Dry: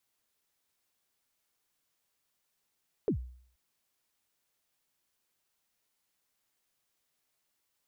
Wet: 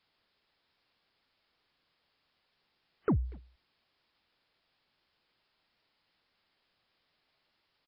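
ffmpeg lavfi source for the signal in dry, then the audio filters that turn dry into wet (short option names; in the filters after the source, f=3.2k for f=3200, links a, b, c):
-f lavfi -i "aevalsrc='0.0708*pow(10,-3*t/0.57)*sin(2*PI*(490*0.095/log(62/490)*(exp(log(62/490)*min(t,0.095)/0.095)-1)+62*max(t-0.095,0)))':d=0.48:s=44100"
-filter_complex "[0:a]aresample=11025,aeval=exprs='0.0708*sin(PI/2*1.58*val(0)/0.0708)':c=same,aresample=44100,asplit=2[a][b];[b]adelay=240,highpass=300,lowpass=3.4k,asoftclip=type=hard:threshold=-31.5dB,volume=-18dB[c];[a][c]amix=inputs=2:normalize=0" -ar 48000 -c:a wmav2 -b:a 32k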